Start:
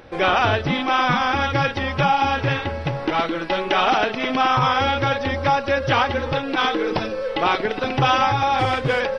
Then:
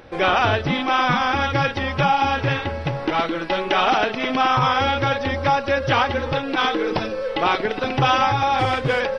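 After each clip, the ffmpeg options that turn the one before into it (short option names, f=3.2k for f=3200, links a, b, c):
-af anull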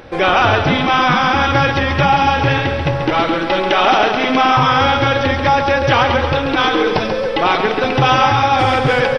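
-filter_complex "[0:a]asplit=2[a][b];[b]alimiter=limit=-15.5dB:level=0:latency=1,volume=-2.5dB[c];[a][c]amix=inputs=2:normalize=0,aecho=1:1:137|274|411|548|685|822:0.447|0.228|0.116|0.0593|0.0302|0.0154,volume=2dB"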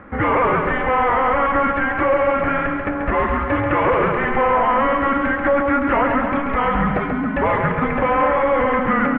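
-af "crystalizer=i=7:c=0,asoftclip=type=hard:threshold=-7dB,highpass=f=260:t=q:w=0.5412,highpass=f=260:t=q:w=1.307,lowpass=f=2.1k:t=q:w=0.5176,lowpass=f=2.1k:t=q:w=0.7071,lowpass=f=2.1k:t=q:w=1.932,afreqshift=-270,volume=-4dB"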